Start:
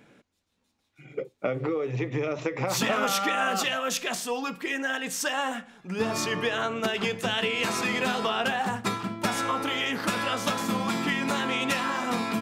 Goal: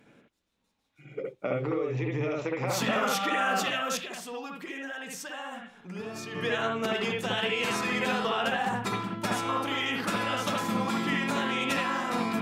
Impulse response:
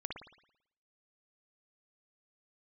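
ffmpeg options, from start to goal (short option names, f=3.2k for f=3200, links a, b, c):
-filter_complex "[0:a]asplit=3[a][b][c];[a]afade=t=out:st=4:d=0.02[d];[b]acompressor=threshold=-34dB:ratio=6,afade=t=in:st=4:d=0.02,afade=t=out:st=6.34:d=0.02[e];[c]afade=t=in:st=6.34:d=0.02[f];[d][e][f]amix=inputs=3:normalize=0[g];[1:a]atrim=start_sample=2205,atrim=end_sample=4410,asetrate=39249,aresample=44100[h];[g][h]afir=irnorm=-1:irlink=0,volume=-1dB"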